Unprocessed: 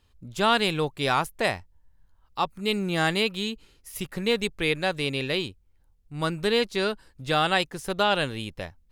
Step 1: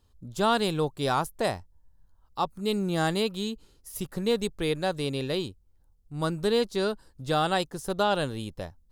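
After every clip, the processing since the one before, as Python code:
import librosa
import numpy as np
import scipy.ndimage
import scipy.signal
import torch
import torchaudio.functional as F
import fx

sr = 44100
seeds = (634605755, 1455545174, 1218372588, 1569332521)

y = fx.peak_eq(x, sr, hz=2300.0, db=-11.5, octaves=1.1)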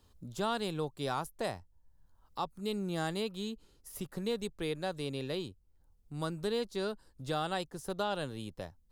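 y = fx.band_squash(x, sr, depth_pct=40)
y = y * 10.0 ** (-8.5 / 20.0)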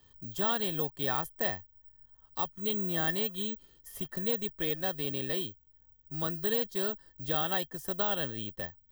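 y = fx.small_body(x, sr, hz=(1800.0, 3200.0), ring_ms=65, db=18)
y = (np.kron(scipy.signal.resample_poly(y, 1, 2), np.eye(2)[0]) * 2)[:len(y)]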